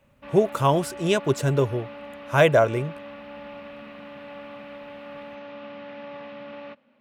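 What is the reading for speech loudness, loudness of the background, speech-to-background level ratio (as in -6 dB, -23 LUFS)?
-22.5 LUFS, -40.0 LUFS, 17.5 dB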